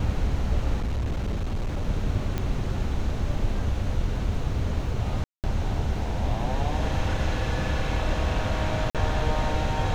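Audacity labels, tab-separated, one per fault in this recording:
0.760000	1.890000	clipping −23.5 dBFS
2.380000	2.380000	click −15 dBFS
5.240000	5.440000	drop-out 198 ms
8.900000	8.950000	drop-out 47 ms

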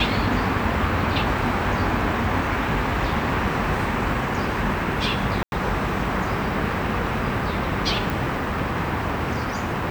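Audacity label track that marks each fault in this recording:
5.430000	5.520000	drop-out 91 ms
8.100000	8.100000	click

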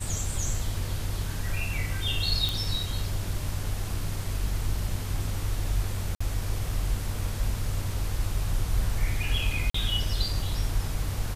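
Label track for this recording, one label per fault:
2.490000	2.490000	click
6.150000	6.210000	drop-out 55 ms
9.700000	9.740000	drop-out 44 ms

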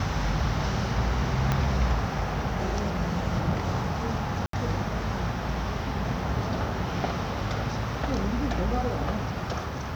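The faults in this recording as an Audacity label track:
1.520000	1.520000	click −11 dBFS
4.460000	4.530000	drop-out 73 ms

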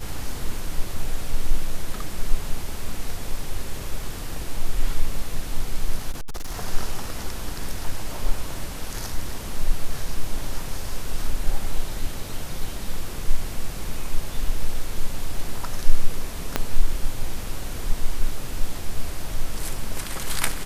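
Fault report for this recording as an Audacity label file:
6.110000	6.630000	clipping −24.5 dBFS
16.560000	16.560000	click −5 dBFS

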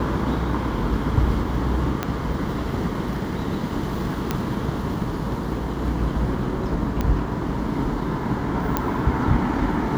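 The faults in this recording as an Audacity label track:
2.030000	2.030000	click −9 dBFS
4.310000	4.310000	click −8 dBFS
7.010000	7.010000	click −11 dBFS
8.770000	8.770000	click −6 dBFS

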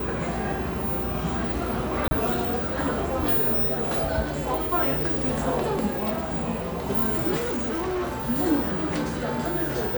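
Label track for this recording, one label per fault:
2.080000	2.110000	drop-out 30 ms
7.360000	8.260000	clipping −24.5 dBFS

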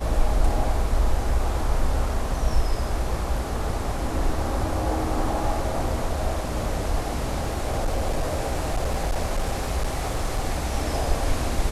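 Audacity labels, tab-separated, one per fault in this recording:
7.220000	10.450000	clipping −19 dBFS

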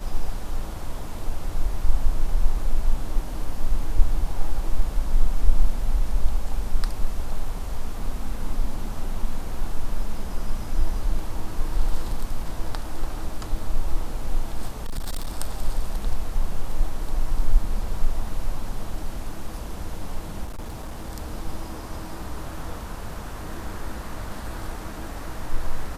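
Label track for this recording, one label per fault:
14.840000	15.320000	clipping −22.5 dBFS
20.450000	21.100000	clipping −28.5 dBFS

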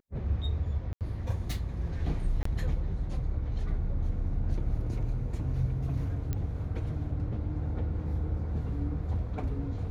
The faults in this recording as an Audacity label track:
0.930000	1.010000	drop-out 78 ms
2.430000	2.450000	drop-out 24 ms
6.330000	6.330000	click −20 dBFS

